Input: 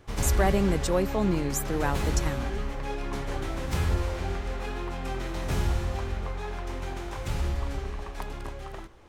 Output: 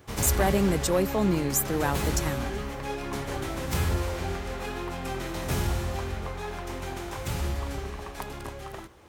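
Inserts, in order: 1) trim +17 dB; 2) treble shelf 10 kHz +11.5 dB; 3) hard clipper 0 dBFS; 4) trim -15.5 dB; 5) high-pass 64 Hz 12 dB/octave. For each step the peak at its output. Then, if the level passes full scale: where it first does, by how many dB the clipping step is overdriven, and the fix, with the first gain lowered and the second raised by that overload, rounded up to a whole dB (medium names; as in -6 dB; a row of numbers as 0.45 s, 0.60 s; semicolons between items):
+5.5 dBFS, +7.0 dBFS, 0.0 dBFS, -15.5 dBFS, -11.0 dBFS; step 1, 7.0 dB; step 1 +10 dB, step 4 -8.5 dB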